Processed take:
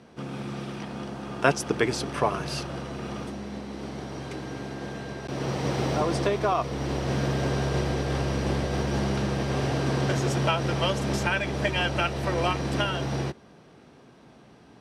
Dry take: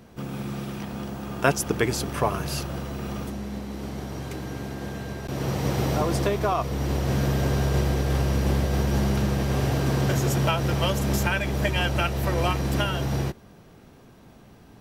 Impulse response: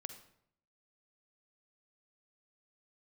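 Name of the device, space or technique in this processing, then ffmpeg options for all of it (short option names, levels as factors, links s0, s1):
car door speaker: -af "highpass=94,equalizer=f=100:t=q:w=4:g=-10,equalizer=f=190:t=q:w=4:g=-4,equalizer=f=7100:t=q:w=4:g=-7,lowpass=f=8800:w=0.5412,lowpass=f=8800:w=1.3066"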